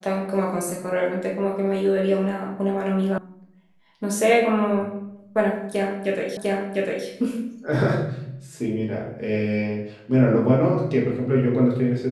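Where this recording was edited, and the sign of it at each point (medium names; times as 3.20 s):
3.18 s: sound stops dead
6.37 s: repeat of the last 0.7 s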